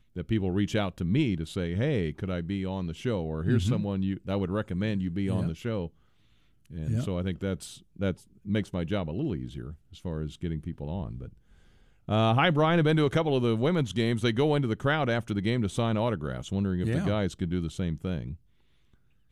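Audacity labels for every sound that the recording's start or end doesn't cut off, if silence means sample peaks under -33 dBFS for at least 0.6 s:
6.740000	11.250000	sound
12.090000	18.330000	sound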